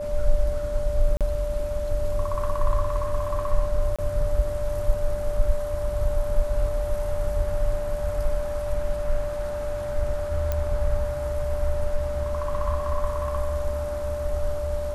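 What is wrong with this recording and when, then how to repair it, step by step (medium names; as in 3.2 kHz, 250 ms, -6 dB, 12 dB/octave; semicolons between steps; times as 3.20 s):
whine 590 Hz -28 dBFS
1.17–1.21 s: dropout 37 ms
3.96–3.99 s: dropout 26 ms
10.52 s: pop -13 dBFS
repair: de-click; band-stop 590 Hz, Q 30; interpolate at 1.17 s, 37 ms; interpolate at 3.96 s, 26 ms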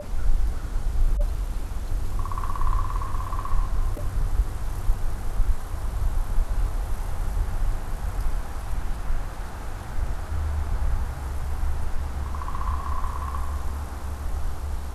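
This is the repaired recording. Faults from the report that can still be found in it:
nothing left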